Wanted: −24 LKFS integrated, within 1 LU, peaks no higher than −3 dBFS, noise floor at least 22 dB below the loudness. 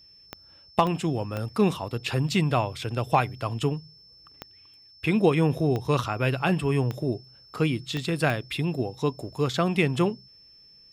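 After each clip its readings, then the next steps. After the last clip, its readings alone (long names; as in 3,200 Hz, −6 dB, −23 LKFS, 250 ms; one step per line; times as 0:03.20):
number of clicks 8; interfering tone 5,300 Hz; level of the tone −51 dBFS; integrated loudness −26.5 LKFS; sample peak −8.0 dBFS; target loudness −24.0 LKFS
→ click removal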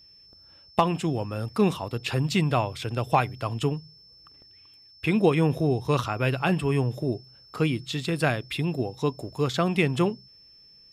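number of clicks 0; interfering tone 5,300 Hz; level of the tone −51 dBFS
→ notch filter 5,300 Hz, Q 30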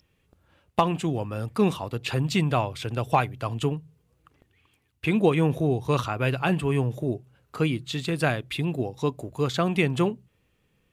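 interfering tone none found; integrated loudness −26.5 LKFS; sample peak −8.0 dBFS; target loudness −24.0 LKFS
→ level +2.5 dB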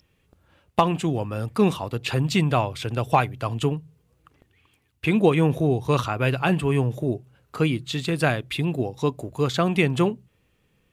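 integrated loudness −24.0 LKFS; sample peak −5.5 dBFS; background noise floor −67 dBFS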